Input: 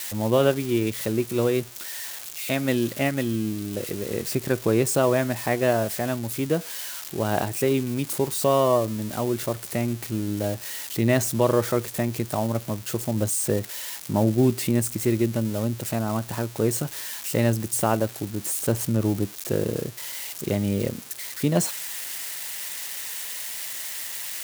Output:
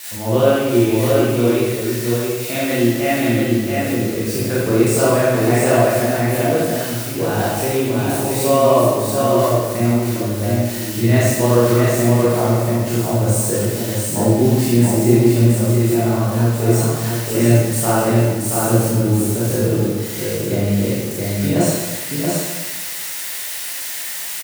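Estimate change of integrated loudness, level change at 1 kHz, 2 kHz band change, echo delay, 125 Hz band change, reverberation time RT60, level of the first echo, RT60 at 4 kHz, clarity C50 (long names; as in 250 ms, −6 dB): +8.5 dB, +8.5 dB, +8.0 dB, 678 ms, +10.5 dB, 1.3 s, −3.5 dB, 1.1 s, −5.0 dB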